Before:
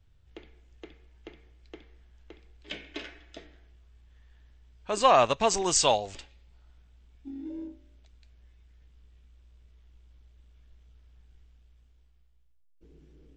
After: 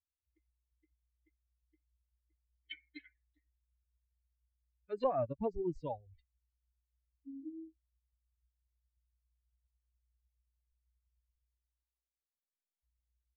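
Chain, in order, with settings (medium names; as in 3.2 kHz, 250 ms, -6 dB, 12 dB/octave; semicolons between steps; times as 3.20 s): expander on every frequency bin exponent 3; low-pass that closes with the level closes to 430 Hz, closed at -31.5 dBFS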